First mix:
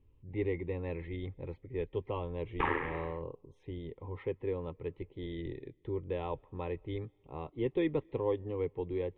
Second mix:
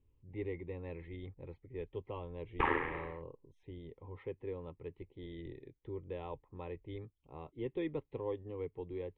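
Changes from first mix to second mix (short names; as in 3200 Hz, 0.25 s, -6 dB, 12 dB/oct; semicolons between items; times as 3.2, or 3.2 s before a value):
speech -6.0 dB; reverb: off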